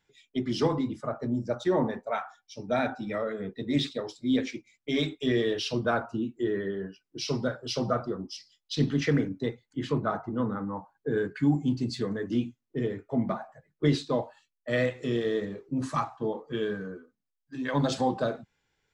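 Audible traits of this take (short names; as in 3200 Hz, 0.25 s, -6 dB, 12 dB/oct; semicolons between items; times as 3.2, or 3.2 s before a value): noise floor -83 dBFS; spectral tilt -5.5 dB/oct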